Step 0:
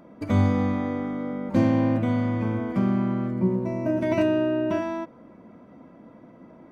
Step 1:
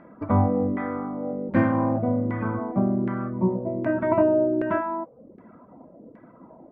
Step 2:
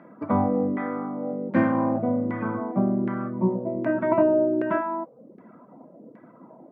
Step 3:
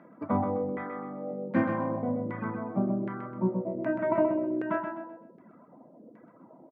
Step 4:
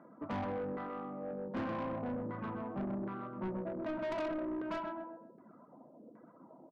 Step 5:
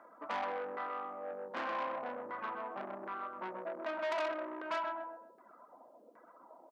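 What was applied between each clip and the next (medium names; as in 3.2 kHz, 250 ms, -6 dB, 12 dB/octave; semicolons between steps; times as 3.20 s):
reverb removal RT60 0.65 s; LFO low-pass saw down 1.3 Hz 400–1900 Hz; dynamic bell 1.5 kHz, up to +4 dB, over -38 dBFS, Q 0.81
high-pass 130 Hz 24 dB/octave
reverb removal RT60 0.74 s; on a send: feedback delay 128 ms, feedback 33%, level -6 dB; on the sum: trim -4.5 dB
resonant high shelf 1.7 kHz -7 dB, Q 1.5; hum notches 60/120/180 Hz; saturation -30 dBFS, distortion -8 dB; trim -4 dB
high-pass 740 Hz 12 dB/octave; trim +6 dB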